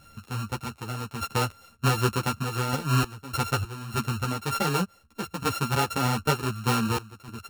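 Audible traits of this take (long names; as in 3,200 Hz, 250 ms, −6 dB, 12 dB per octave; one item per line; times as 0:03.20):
a buzz of ramps at a fixed pitch in blocks of 32 samples
sample-and-hold tremolo 3.3 Hz, depth 90%
a shimmering, thickened sound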